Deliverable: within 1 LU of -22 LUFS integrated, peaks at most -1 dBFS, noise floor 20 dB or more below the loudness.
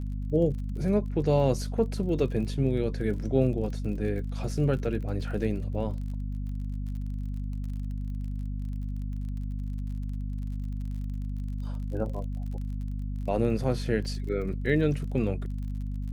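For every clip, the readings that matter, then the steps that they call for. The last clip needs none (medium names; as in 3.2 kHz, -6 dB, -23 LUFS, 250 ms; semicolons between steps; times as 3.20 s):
tick rate 38 per s; hum 50 Hz; highest harmonic 250 Hz; hum level -30 dBFS; loudness -30.5 LUFS; peak level -12.0 dBFS; loudness target -22.0 LUFS
-> de-click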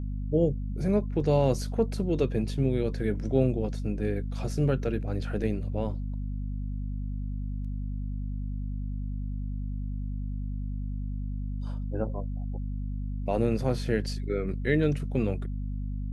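tick rate 0.062 per s; hum 50 Hz; highest harmonic 250 Hz; hum level -30 dBFS
-> de-hum 50 Hz, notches 5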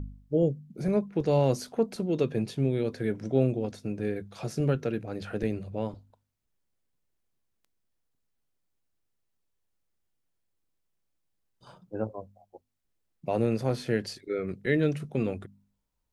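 hum not found; loudness -29.5 LUFS; peak level -12.5 dBFS; loudness target -22.0 LUFS
-> trim +7.5 dB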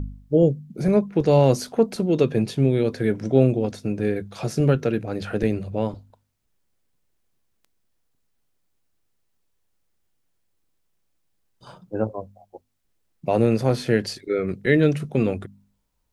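loudness -22.0 LUFS; peak level -5.0 dBFS; noise floor -71 dBFS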